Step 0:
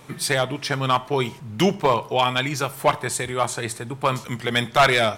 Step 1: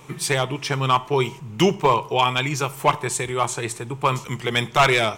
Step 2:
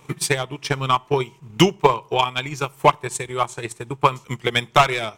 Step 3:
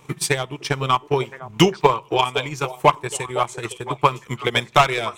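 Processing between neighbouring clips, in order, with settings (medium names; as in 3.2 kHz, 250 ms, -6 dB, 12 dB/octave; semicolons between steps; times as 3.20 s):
rippled EQ curve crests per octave 0.72, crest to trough 6 dB
transient shaper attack +11 dB, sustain -7 dB; trim -5 dB
repeats whose band climbs or falls 509 ms, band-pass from 500 Hz, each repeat 1.4 oct, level -8.5 dB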